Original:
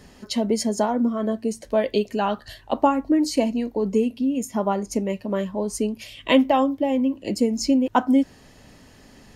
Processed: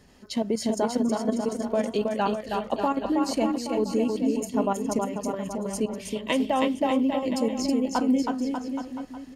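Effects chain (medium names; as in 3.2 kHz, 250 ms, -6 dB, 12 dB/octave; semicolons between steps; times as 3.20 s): level held to a coarse grid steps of 11 dB; bouncing-ball echo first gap 320 ms, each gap 0.85×, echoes 5; trim -1 dB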